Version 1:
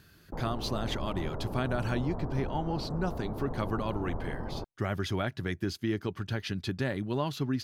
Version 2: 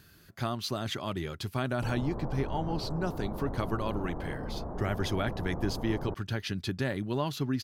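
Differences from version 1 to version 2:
background: entry +1.50 s
master: add high-shelf EQ 6,500 Hz +5 dB

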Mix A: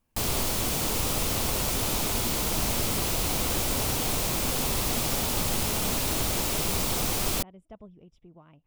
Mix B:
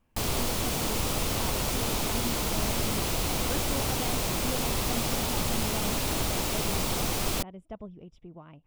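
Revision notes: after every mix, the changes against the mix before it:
speech +5.5 dB
master: add high-shelf EQ 6,300 Hz −5 dB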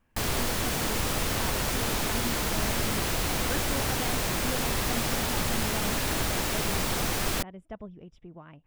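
master: add parametric band 1,700 Hz +7.5 dB 0.59 octaves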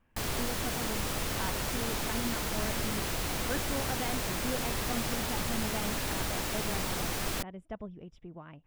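background −5.0 dB

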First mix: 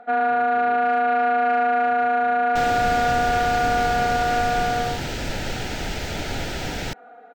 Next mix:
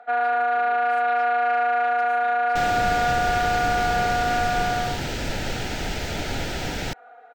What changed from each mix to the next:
speech: add spectral tilt +4 dB per octave
first sound: add high-pass filter 590 Hz 12 dB per octave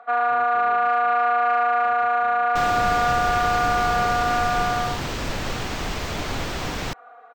speech: add spectral tilt −4 dB per octave
master: remove Butterworth band-reject 1,100 Hz, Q 3.3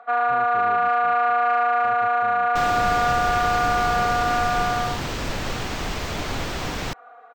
speech: add spectral tilt −3.5 dB per octave

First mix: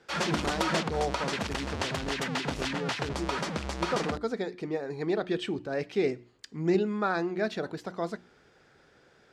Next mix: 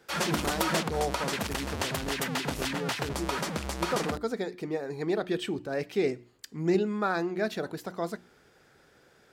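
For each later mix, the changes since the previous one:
master: remove low-pass filter 6,300 Hz 12 dB per octave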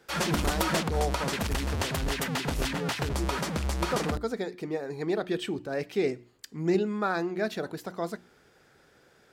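background: remove high-pass filter 170 Hz 6 dB per octave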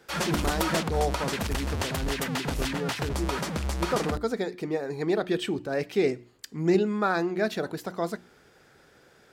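speech +3.0 dB

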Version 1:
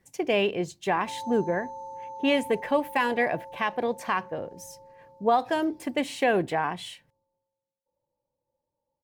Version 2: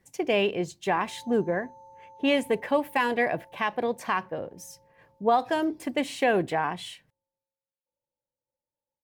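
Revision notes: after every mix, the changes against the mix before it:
background −11.0 dB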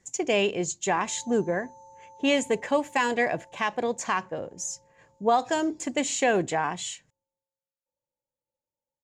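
master: add low-pass with resonance 7,000 Hz, resonance Q 11

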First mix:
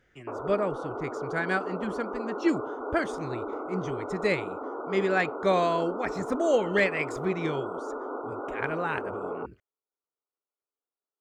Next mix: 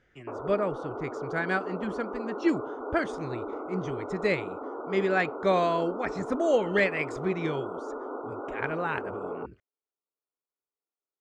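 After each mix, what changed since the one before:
background: add high-frequency loss of the air 410 metres
master: add high-frequency loss of the air 50 metres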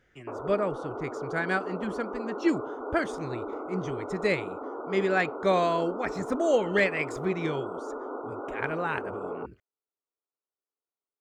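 master: remove high-frequency loss of the air 50 metres

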